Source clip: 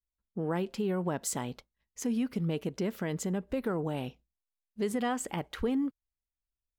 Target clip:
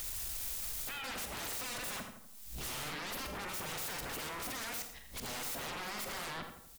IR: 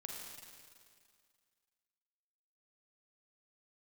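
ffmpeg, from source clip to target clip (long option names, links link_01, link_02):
-filter_complex "[0:a]areverse,highshelf=frequency=2600:gain=10.5,acompressor=mode=upward:threshold=-44dB:ratio=2.5,alimiter=level_in=19dB:limit=-24dB:level=0:latency=1:release=32,volume=-19dB,aeval=exprs='0.0075*sin(PI/2*7.08*val(0)/0.0075)':channel_layout=same,asplit=2[link_01][link_02];[link_02]adelay=44,volume=-12.5dB[link_03];[link_01][link_03]amix=inputs=2:normalize=0,asplit=2[link_04][link_05];[link_05]adelay=82,lowpass=frequency=2000:poles=1,volume=-6dB,asplit=2[link_06][link_07];[link_07]adelay=82,lowpass=frequency=2000:poles=1,volume=0.51,asplit=2[link_08][link_09];[link_09]adelay=82,lowpass=frequency=2000:poles=1,volume=0.51,asplit=2[link_10][link_11];[link_11]adelay=82,lowpass=frequency=2000:poles=1,volume=0.51,asplit=2[link_12][link_13];[link_13]adelay=82,lowpass=frequency=2000:poles=1,volume=0.51,asplit=2[link_14][link_15];[link_15]adelay=82,lowpass=frequency=2000:poles=1,volume=0.51[link_16];[link_04][link_06][link_08][link_10][link_12][link_14][link_16]amix=inputs=7:normalize=0,asplit=2[link_17][link_18];[1:a]atrim=start_sample=2205,afade=type=out:start_time=0.18:duration=0.01,atrim=end_sample=8379,highshelf=frequency=4000:gain=9.5[link_19];[link_18][link_19]afir=irnorm=-1:irlink=0,volume=-3dB[link_20];[link_17][link_20]amix=inputs=2:normalize=0"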